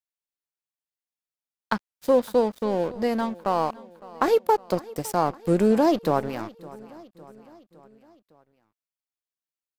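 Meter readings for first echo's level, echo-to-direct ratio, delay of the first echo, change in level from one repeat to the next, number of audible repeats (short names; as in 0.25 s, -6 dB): -20.5 dB, -19.0 dB, 0.559 s, -5.0 dB, 3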